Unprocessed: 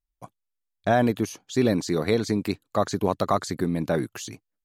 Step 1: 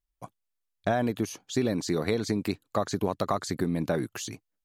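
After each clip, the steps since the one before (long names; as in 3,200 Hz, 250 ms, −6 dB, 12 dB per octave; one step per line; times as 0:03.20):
downward compressor 4 to 1, threshold −23 dBFS, peak gain reduction 7 dB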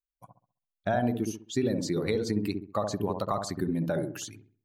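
spectral dynamics exaggerated over time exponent 1.5
delay with a low-pass on its return 66 ms, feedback 34%, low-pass 840 Hz, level −3 dB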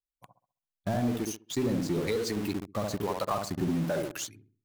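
two-band tremolo in antiphase 1.1 Hz, depth 70%, crossover 420 Hz
in parallel at −9 dB: log-companded quantiser 2 bits
on the sum: level −1.5 dB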